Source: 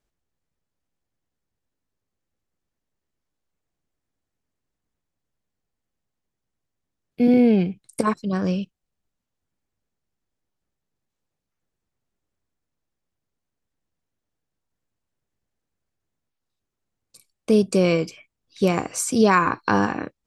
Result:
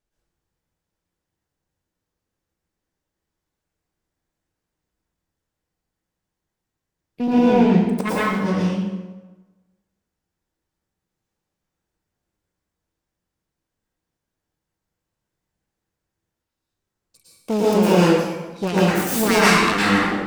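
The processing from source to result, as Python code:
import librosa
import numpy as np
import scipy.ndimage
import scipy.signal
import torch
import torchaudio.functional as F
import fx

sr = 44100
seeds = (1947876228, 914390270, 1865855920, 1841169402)

y = fx.self_delay(x, sr, depth_ms=0.49)
y = fx.rev_plate(y, sr, seeds[0], rt60_s=1.2, hf_ratio=0.7, predelay_ms=95, drr_db=-8.5)
y = y * librosa.db_to_amplitude(-4.5)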